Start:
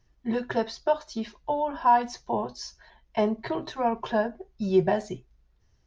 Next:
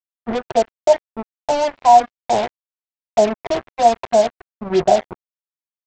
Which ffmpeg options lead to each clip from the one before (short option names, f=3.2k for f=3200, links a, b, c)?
-af "lowpass=f=710:t=q:w=4.9,aresample=16000,acrusher=bits=3:mix=0:aa=0.5,aresample=44100,volume=1.5dB"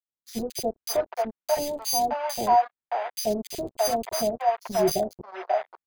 -filter_complex "[0:a]acrusher=samples=8:mix=1:aa=0.000001,acrossover=split=610|2700[a][b][c];[a]adelay=80[d];[b]adelay=620[e];[d][e][c]amix=inputs=3:normalize=0,volume=-6dB"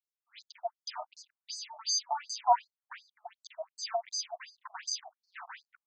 -af "afftfilt=real='re*between(b*sr/1024,890*pow(6100/890,0.5+0.5*sin(2*PI*2.7*pts/sr))/1.41,890*pow(6100/890,0.5+0.5*sin(2*PI*2.7*pts/sr))*1.41)':imag='im*between(b*sr/1024,890*pow(6100/890,0.5+0.5*sin(2*PI*2.7*pts/sr))/1.41,890*pow(6100/890,0.5+0.5*sin(2*PI*2.7*pts/sr))*1.41)':win_size=1024:overlap=0.75,volume=-1dB"